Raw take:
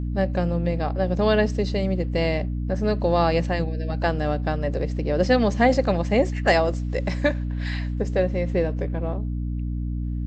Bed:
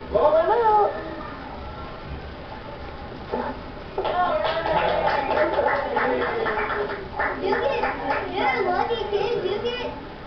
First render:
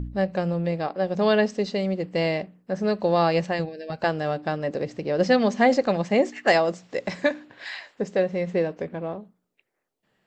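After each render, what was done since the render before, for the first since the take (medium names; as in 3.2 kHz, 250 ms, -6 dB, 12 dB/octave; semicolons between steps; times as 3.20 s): de-hum 60 Hz, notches 5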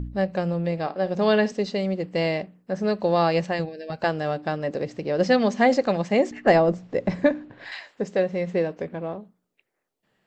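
0.72–1.52 s: flutter echo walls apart 9.6 m, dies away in 0.22 s; 6.31–7.72 s: tilt EQ -3.5 dB/octave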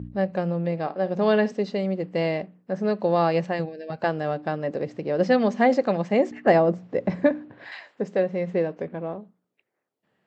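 high-pass 100 Hz; treble shelf 3.5 kHz -10.5 dB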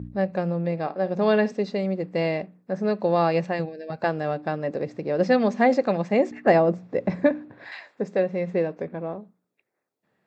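band-stop 3 kHz, Q 6.5; dynamic bell 2.8 kHz, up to +4 dB, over -49 dBFS, Q 3.3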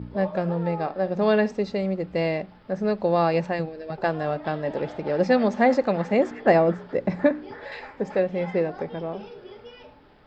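add bed -18 dB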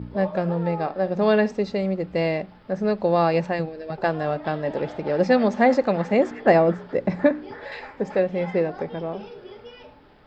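trim +1.5 dB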